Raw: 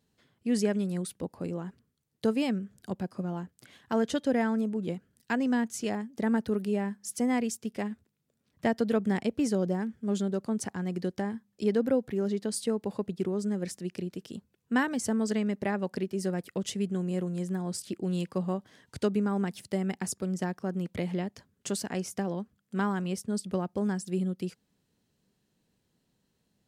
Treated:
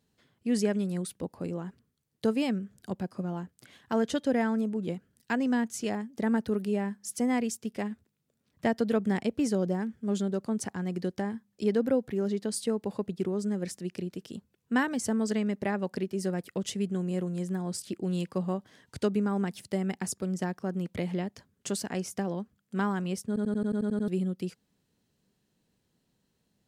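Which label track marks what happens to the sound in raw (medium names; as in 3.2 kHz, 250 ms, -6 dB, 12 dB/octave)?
23.270000	23.270000	stutter in place 0.09 s, 9 plays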